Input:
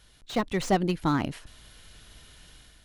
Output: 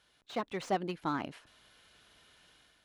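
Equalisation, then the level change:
high-pass filter 490 Hz 6 dB per octave
high-shelf EQ 4,400 Hz −11.5 dB
notch filter 1,900 Hz, Q 22
−4.0 dB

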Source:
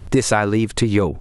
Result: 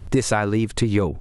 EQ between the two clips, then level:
low-shelf EQ 170 Hz +3.5 dB
−4.0 dB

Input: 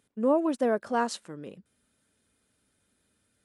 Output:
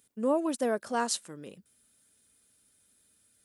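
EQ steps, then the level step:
high-shelf EQ 3,700 Hz +11 dB
high-shelf EQ 7,500 Hz +5.5 dB
−3.5 dB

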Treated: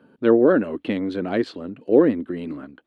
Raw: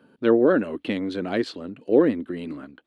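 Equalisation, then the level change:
high-shelf EQ 3,000 Hz −8.5 dB
+2.5 dB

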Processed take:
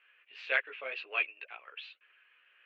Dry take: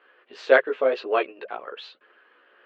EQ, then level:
resonant band-pass 2,500 Hz, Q 5.1
+4.5 dB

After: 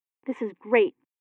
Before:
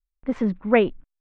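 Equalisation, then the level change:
high-pass filter 170 Hz 24 dB per octave
phaser with its sweep stopped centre 940 Hz, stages 8
0.0 dB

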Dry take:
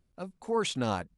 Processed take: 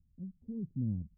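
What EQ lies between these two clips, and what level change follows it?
inverse Chebyshev low-pass filter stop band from 1,300 Hz, stop band 80 dB
parametric band 78 Hz +6 dB 0.42 octaves
+1.5 dB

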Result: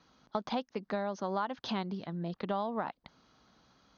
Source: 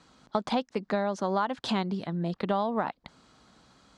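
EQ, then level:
Chebyshev low-pass filter 6,600 Hz, order 10
−5.5 dB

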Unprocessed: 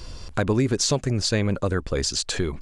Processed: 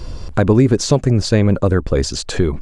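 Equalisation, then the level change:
tilt shelving filter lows +5 dB, about 1,300 Hz
+5.0 dB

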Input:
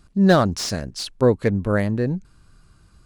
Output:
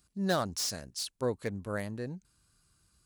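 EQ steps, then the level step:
high-pass filter 43 Hz
first-order pre-emphasis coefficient 0.8
dynamic equaliser 840 Hz, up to +4 dB, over −45 dBFS, Q 0.82
−3.0 dB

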